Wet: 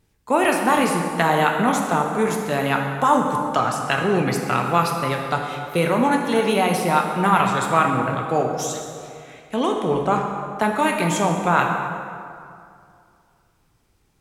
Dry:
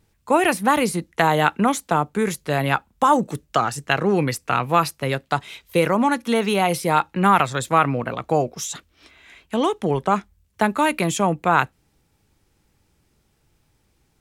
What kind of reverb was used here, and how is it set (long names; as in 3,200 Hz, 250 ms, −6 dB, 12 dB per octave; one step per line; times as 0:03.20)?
dense smooth reverb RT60 2.4 s, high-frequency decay 0.6×, DRR 1 dB
level −2 dB